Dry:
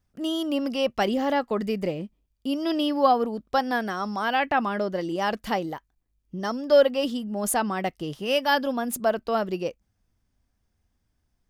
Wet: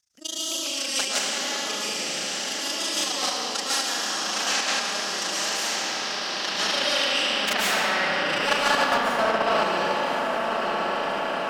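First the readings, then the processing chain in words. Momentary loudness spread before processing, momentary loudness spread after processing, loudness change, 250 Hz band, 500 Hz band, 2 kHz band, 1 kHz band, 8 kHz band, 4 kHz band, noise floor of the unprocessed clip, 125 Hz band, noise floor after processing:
10 LU, 5 LU, +1.5 dB, −8.0 dB, −3.5 dB, +6.5 dB, +1.0 dB, +12.0 dB, +10.5 dB, −75 dBFS, −6.0 dB, −30 dBFS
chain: stylus tracing distortion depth 0.17 ms
parametric band 63 Hz +10.5 dB 1.5 octaves
on a send: feedback delay with all-pass diffusion 1,162 ms, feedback 55%, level −7 dB
on the sum: amplitude modulation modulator 27 Hz, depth 90%
band-pass filter sweep 6,200 Hz → 1,000 Hz, 0:05.55–0:08.99
comb and all-pass reverb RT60 1.6 s, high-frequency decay 0.9×, pre-delay 95 ms, DRR −10 dB
in parallel at 0 dB: output level in coarse steps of 13 dB
on the sum: every bin compressed towards the loudest bin 2 to 1

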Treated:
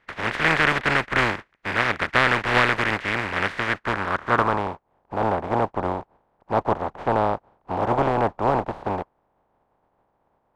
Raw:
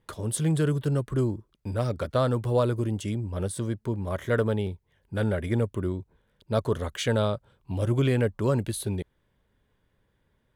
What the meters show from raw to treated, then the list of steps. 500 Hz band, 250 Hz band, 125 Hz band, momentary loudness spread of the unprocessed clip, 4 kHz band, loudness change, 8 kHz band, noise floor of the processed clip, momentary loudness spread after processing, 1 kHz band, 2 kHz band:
+2.0 dB, −0.5 dB, −5.5 dB, 9 LU, +8.5 dB, +5.0 dB, can't be measured, −70 dBFS, 11 LU, +15.0 dB, +17.5 dB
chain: compressing power law on the bin magnitudes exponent 0.18
low-pass filter sweep 1,900 Hz → 830 Hz, 0:03.66–0:04.89
level +6.5 dB

